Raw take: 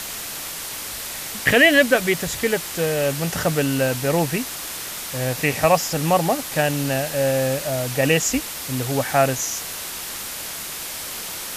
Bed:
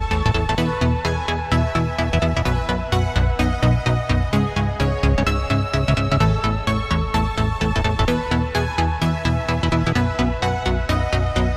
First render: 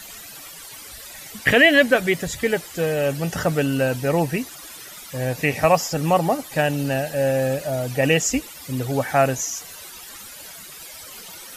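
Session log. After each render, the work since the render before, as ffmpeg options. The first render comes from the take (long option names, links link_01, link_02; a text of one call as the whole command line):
ffmpeg -i in.wav -af "afftdn=noise_reduction=14:noise_floor=-32" out.wav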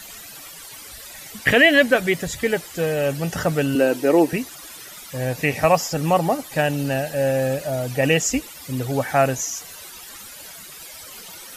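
ffmpeg -i in.wav -filter_complex "[0:a]asettb=1/sr,asplit=3[link_01][link_02][link_03];[link_01]atrim=end=3.754[link_04];[link_02]atrim=start=3.75:end=4.33,asetpts=PTS-STARTPTS,afade=type=in:duration=0.004:curve=qsin,afade=type=out:start_time=0.576:duration=0.004:curve=qsin,highpass=frequency=320:width_type=q:width=3.2[link_05];[link_03]atrim=start=4.326[link_06];[link_04][link_05]acrossfade=duration=0.004:curve1=hsin:curve2=qsin[link_07];[link_07][link_06]acrossfade=duration=0.004:curve1=qsin:curve2=hsin" out.wav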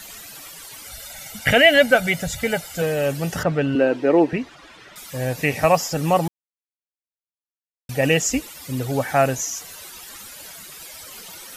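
ffmpeg -i in.wav -filter_complex "[0:a]asettb=1/sr,asplit=3[link_01][link_02][link_03];[link_01]atrim=end=0.854[link_04];[link_02]atrim=start=0.85:end=2.82,asetpts=PTS-STARTPTS,afade=type=in:duration=0.004:curve=qsin,afade=type=out:start_time=1.966:duration=0.004:curve=qsin,aecho=1:1:1.4:0.65,atrim=end_sample=86877[link_05];[link_03]atrim=start=2.816[link_06];[link_04][link_05]acrossfade=duration=0.004:curve1=hsin:curve2=qsin[link_07];[link_07][link_06]acrossfade=duration=0.004:curve1=qsin:curve2=hsin,asettb=1/sr,asplit=3[link_08][link_09][link_10];[link_08]atrim=end=3.434[link_11];[link_09]atrim=start=3.43:end=4.96,asetpts=PTS-STARTPTS,afade=type=in:duration=0.004:curve=qsin,afade=type=out:start_time=1.526:duration=0.004:curve=qsin,lowpass=2900[link_12];[link_10]atrim=start=4.956[link_13];[link_11][link_12]acrossfade=duration=0.004:curve1=hsin:curve2=qsin[link_14];[link_14][link_13]acrossfade=duration=0.004:curve1=qsin:curve2=hsin,asplit=3[link_15][link_16][link_17];[link_15]atrim=end=6.28,asetpts=PTS-STARTPTS,afade=type=out:start_time=6.276:duration=0.004:curve=hsin[link_18];[link_16]atrim=start=6.28:end=7.89,asetpts=PTS-STARTPTS,volume=0[link_19];[link_17]atrim=start=7.89,asetpts=PTS-STARTPTS,afade=type=in:duration=0.004:curve=hsin[link_20];[link_18][link_19][link_20]concat=n=3:v=0:a=1" out.wav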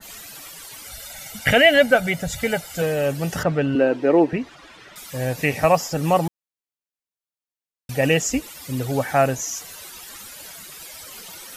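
ffmpeg -i in.wav -af "adynamicequalizer=threshold=0.0316:dfrequency=1600:dqfactor=0.7:tfrequency=1600:tqfactor=0.7:attack=5:release=100:ratio=0.375:range=2.5:mode=cutabove:tftype=highshelf" out.wav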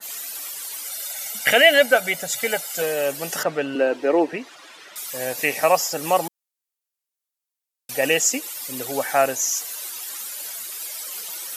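ffmpeg -i in.wav -af "highpass=370,aemphasis=mode=production:type=cd" out.wav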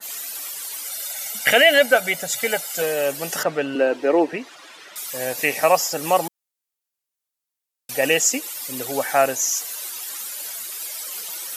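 ffmpeg -i in.wav -af "volume=1dB,alimiter=limit=-3dB:level=0:latency=1" out.wav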